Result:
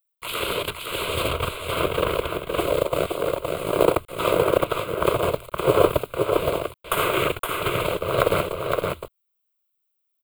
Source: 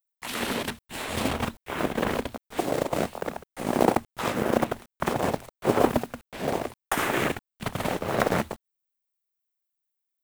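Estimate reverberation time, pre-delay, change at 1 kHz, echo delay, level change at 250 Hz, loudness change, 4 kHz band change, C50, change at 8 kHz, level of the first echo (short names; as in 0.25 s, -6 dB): none, none, +3.0 dB, 0.517 s, -1.0 dB, +4.5 dB, +6.5 dB, none, +2.0 dB, -4.0 dB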